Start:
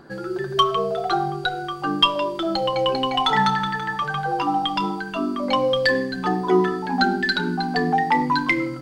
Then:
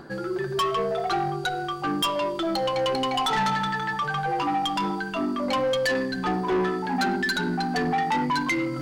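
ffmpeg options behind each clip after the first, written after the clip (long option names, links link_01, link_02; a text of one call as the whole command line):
ffmpeg -i in.wav -af "areverse,acompressor=mode=upward:threshold=-26dB:ratio=2.5,areverse,asoftclip=type=tanh:threshold=-20dB" out.wav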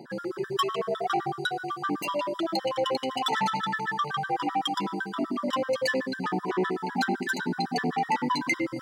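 ffmpeg -i in.wav -af "highpass=frequency=150:width=0.5412,highpass=frequency=150:width=1.3066,afftfilt=real='re*gt(sin(2*PI*7.9*pts/sr)*(1-2*mod(floor(b*sr/1024/990),2)),0)':imag='im*gt(sin(2*PI*7.9*pts/sr)*(1-2*mod(floor(b*sr/1024/990),2)),0)':win_size=1024:overlap=0.75" out.wav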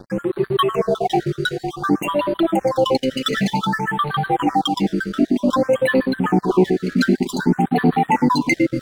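ffmpeg -i in.wav -af "aeval=exprs='sgn(val(0))*max(abs(val(0))-0.00631,0)':channel_layout=same,lowshelf=frequency=400:gain=10,afftfilt=real='re*(1-between(b*sr/1024,850*pow(6600/850,0.5+0.5*sin(2*PI*0.54*pts/sr))/1.41,850*pow(6600/850,0.5+0.5*sin(2*PI*0.54*pts/sr))*1.41))':imag='im*(1-between(b*sr/1024,850*pow(6600/850,0.5+0.5*sin(2*PI*0.54*pts/sr))/1.41,850*pow(6600/850,0.5+0.5*sin(2*PI*0.54*pts/sr))*1.41))':win_size=1024:overlap=0.75,volume=7.5dB" out.wav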